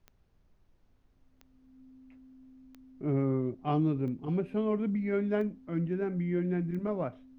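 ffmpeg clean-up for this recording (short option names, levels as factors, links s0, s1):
-af "adeclick=t=4,bandreject=f=260:w=30,agate=range=0.0891:threshold=0.00141"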